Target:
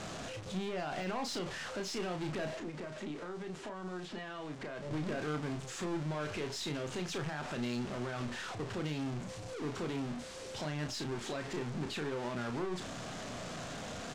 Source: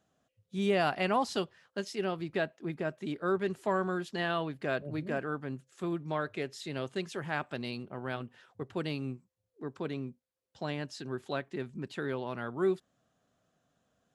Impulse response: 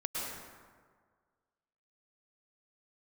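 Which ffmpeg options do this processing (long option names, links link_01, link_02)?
-filter_complex "[0:a]aeval=exprs='val(0)+0.5*0.0158*sgn(val(0))':channel_layout=same,lowpass=frequency=7900:width=0.5412,lowpass=frequency=7900:width=1.3066,deesser=0.95,alimiter=level_in=2.5dB:limit=-24dB:level=0:latency=1:release=48,volume=-2.5dB,asettb=1/sr,asplit=3[link_01][link_02][link_03];[link_01]atrim=end=2.554[link_04];[link_02]atrim=start=2.55:end=4.91,asetpts=PTS-STARTPTS,afade=type=in:duration=0.004:curve=qsin,afade=type=out:start_time=2.356:duration=0.004:curve=qsin,acrossover=split=150|3400[link_05][link_06][link_07];[link_05]acompressor=threshold=-55dB:ratio=4[link_08];[link_06]acompressor=threshold=-39dB:ratio=4[link_09];[link_07]acompressor=threshold=-59dB:ratio=4[link_10];[link_08][link_09][link_10]amix=inputs=3:normalize=0[link_11];[link_03]atrim=start=4.906[link_12];[link_04][link_11]acrossfade=duration=0.004:curve1=hsin:curve2=qsin[link_13];[link_13][link_12]acrossfade=duration=0.004:curve1=qsin:curve2=hsin,aeval=exprs='(tanh(44.7*val(0)+0.35)-tanh(0.35))/44.7':channel_layout=same,asplit=2[link_14][link_15];[link_15]adelay=33,volume=-6.5dB[link_16];[link_14][link_16]amix=inputs=2:normalize=0"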